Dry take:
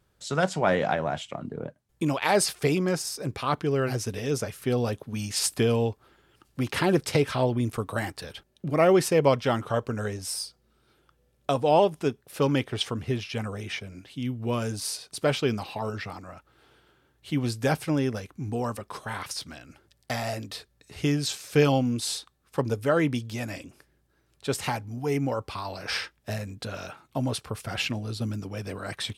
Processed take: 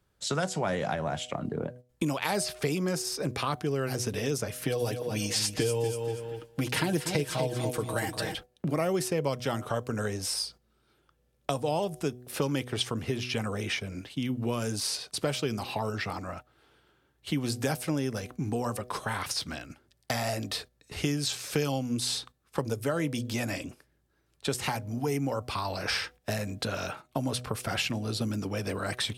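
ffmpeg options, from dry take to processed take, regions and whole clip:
ffmpeg -i in.wav -filter_complex "[0:a]asettb=1/sr,asplit=3[link_01][link_02][link_03];[link_01]atrim=end=4.554[link_04];[link_02]atrim=start=4.55:end=8.35,asetpts=PTS-STARTPTS,afade=type=in:duration=0.004:curve=qsin,afade=type=out:start_time=3.796:duration=0.004:curve=qsin,equalizer=frequency=1200:width=5.2:gain=-6.5,aecho=1:1:6.4:0.65,atrim=end_sample=167580,aecho=1:1:240|480|720:0.335|0.0904|0.0244,atrim=end_sample=167580[link_05];[link_03]atrim=start=8.346[link_06];[link_04][link_05]acrossfade=duration=0.004:curve1=hsin:curve2=qsin[link_07];[link_07][link_06]acrossfade=duration=0.004:curve1=qsin:curve2=hsin,bandreject=frequency=123.8:width_type=h:width=4,bandreject=frequency=247.6:width_type=h:width=4,bandreject=frequency=371.4:width_type=h:width=4,bandreject=frequency=495.2:width_type=h:width=4,bandreject=frequency=619:width_type=h:width=4,bandreject=frequency=742.8:width_type=h:width=4,agate=range=-9dB:threshold=-48dB:ratio=16:detection=peak,acrossover=split=160|5600[link_08][link_09][link_10];[link_08]acompressor=threshold=-44dB:ratio=4[link_11];[link_09]acompressor=threshold=-35dB:ratio=4[link_12];[link_10]acompressor=threshold=-42dB:ratio=4[link_13];[link_11][link_12][link_13]amix=inputs=3:normalize=0,volume=5.5dB" out.wav

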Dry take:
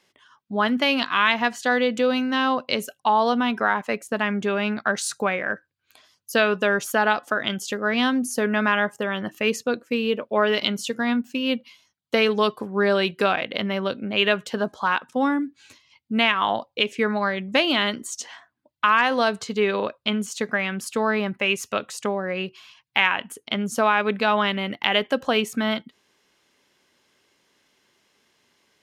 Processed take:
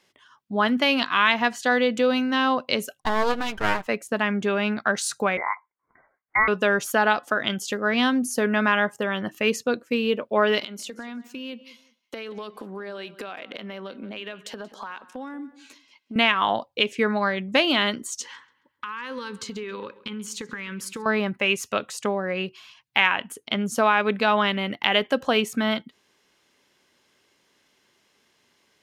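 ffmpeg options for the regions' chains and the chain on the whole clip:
ffmpeg -i in.wav -filter_complex "[0:a]asettb=1/sr,asplit=3[link_01][link_02][link_03];[link_01]atrim=end=3.014[link_04];[link_02]atrim=start=3.01:end=3.87,asetpts=PTS-STARTPTS,afade=type=in:duration=0.004:curve=qsin,afade=type=out:start_time=0.856:duration=0.004:curve=qsin,aecho=1:1:6.4:0.58,atrim=end_sample=37926,aeval=exprs='max(val(0),0)':channel_layout=same[link_05];[link_03]atrim=start=3.866[link_06];[link_04][link_05]acrossfade=duration=0.004:curve1=hsin:curve2=qsin[link_07];[link_07][link_06]acrossfade=duration=0.004:curve1=qsin:curve2=hsin,asettb=1/sr,asplit=3[link_08][link_09][link_10];[link_08]atrim=end=5.374[link_11];[link_09]atrim=start=5.37:end=6.48,asetpts=PTS-STARTPTS,afade=type=in:duration=0.004:curve=qsin,afade=type=out:start_time=1.106:duration=0.004:curve=qsin,highpass=frequency=400:width=0.5412,highpass=frequency=400:width=1.3066,lowpass=frequency=2200:width_type=q:width=0.5098,lowpass=frequency=2200:width_type=q:width=0.6013,lowpass=frequency=2200:width_type=q:width=0.9,lowpass=frequency=2200:width_type=q:width=2.563,afreqshift=-2600[link_12];[link_10]atrim=start=6.476[link_13];[link_11][link_12]acrossfade=duration=0.004:curve1=hsin:curve2=qsin[link_14];[link_14][link_13]acrossfade=duration=0.004:curve1=qsin:curve2=hsin,asettb=1/sr,asplit=3[link_15][link_16][link_17];[link_15]atrim=end=10.614[link_18];[link_16]atrim=start=10.61:end=16.16,asetpts=PTS-STARTPTS,afade=type=in:duration=0.004:curve=qsin,afade=type=out:start_time=5.546:duration=0.004:curve=qsin,highpass=frequency=200:width=0.5412,highpass=frequency=200:width=1.3066,acompressor=threshold=-32dB:ratio=8:attack=3.2:release=140:knee=1:detection=peak,asplit=2[link_19][link_20];[link_20]adelay=181,lowpass=frequency=4800:poles=1,volume=-17dB,asplit=2[link_21][link_22];[link_22]adelay=181,lowpass=frequency=4800:poles=1,volume=0.26[link_23];[link_19][link_21][link_23]amix=inputs=3:normalize=0,atrim=end_sample=244755[link_24];[link_17]atrim=start=16.156[link_25];[link_18][link_24]acrossfade=duration=0.004:curve1=hsin:curve2=qsin[link_26];[link_26][link_25]acrossfade=duration=0.004:curve1=qsin:curve2=hsin,asettb=1/sr,asplit=3[link_27][link_28][link_29];[link_27]atrim=end=18.214[link_30];[link_28]atrim=start=18.21:end=21.06,asetpts=PTS-STARTPTS,afade=type=in:duration=0.004:curve=qsin,afade=type=out:start_time=2.846:duration=0.004:curve=qsin,asuperstop=centerf=680:order=8:qfactor=2.5,acompressor=threshold=-29dB:ratio=20:attack=3.2:release=140:knee=1:detection=peak,asplit=2[link_31][link_32];[link_32]adelay=135,lowpass=frequency=3300:poles=1,volume=-18dB,asplit=2[link_33][link_34];[link_34]adelay=135,lowpass=frequency=3300:poles=1,volume=0.45,asplit=2[link_35][link_36];[link_36]adelay=135,lowpass=frequency=3300:poles=1,volume=0.45,asplit=2[link_37][link_38];[link_38]adelay=135,lowpass=frequency=3300:poles=1,volume=0.45[link_39];[link_31][link_33][link_35][link_37][link_39]amix=inputs=5:normalize=0,atrim=end_sample=125685[link_40];[link_29]atrim=start=21.056[link_41];[link_30][link_40]acrossfade=duration=0.004:curve1=hsin:curve2=qsin[link_42];[link_42][link_41]acrossfade=duration=0.004:curve1=qsin:curve2=hsin" out.wav

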